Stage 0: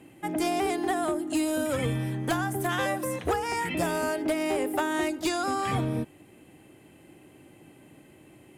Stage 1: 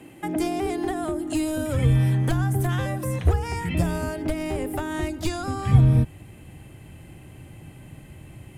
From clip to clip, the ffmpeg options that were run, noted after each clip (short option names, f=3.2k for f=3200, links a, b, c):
-filter_complex "[0:a]acrossover=split=400[a][b];[b]acompressor=threshold=-37dB:ratio=6[c];[a][c]amix=inputs=2:normalize=0,asubboost=boost=10:cutoff=100,volume=6dB"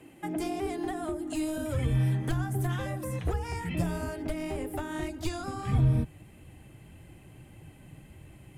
-af "flanger=delay=1.6:depth=5.4:regen=-44:speed=1.7:shape=triangular,volume=-2.5dB"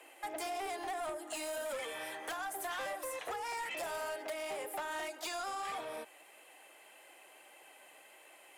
-af "highpass=f=550:w=0.5412,highpass=f=550:w=1.3066,asoftclip=type=tanh:threshold=-38dB,volume=3.5dB"